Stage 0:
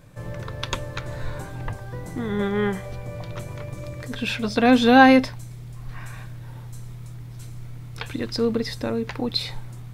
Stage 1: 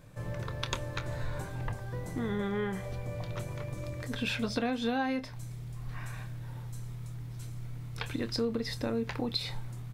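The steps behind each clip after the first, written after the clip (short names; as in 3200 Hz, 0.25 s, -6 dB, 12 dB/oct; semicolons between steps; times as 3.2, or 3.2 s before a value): compressor 12:1, threshold -23 dBFS, peak gain reduction 16 dB; doubler 26 ms -13 dB; gain -4.5 dB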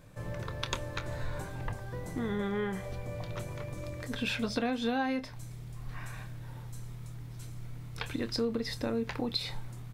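bell 130 Hz -5.5 dB 0.26 oct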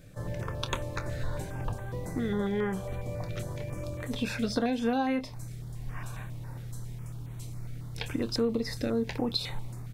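stepped notch 7.3 Hz 980–5000 Hz; gain +3.5 dB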